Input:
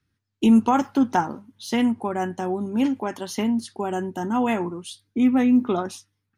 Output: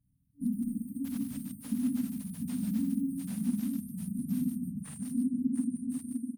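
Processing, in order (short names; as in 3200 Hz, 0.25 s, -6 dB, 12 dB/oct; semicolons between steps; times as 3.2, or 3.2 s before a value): phase scrambler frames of 50 ms; doubler 48 ms -5 dB; compressor 10:1, threshold -29 dBFS, peak gain reduction 18.5 dB; non-linear reverb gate 0.23 s rising, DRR 2.5 dB; echoes that change speed 0.159 s, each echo +6 st, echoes 3; FFT band-reject 290–8500 Hz; reverb removal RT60 1.5 s; tapped delay 48/59/148/293/700 ms -17/-12/-8/-16.5/-5.5 dB; dynamic EQ 120 Hz, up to -5 dB, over -50 dBFS, Q 2.2; slew limiter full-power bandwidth 32 Hz; gain +1.5 dB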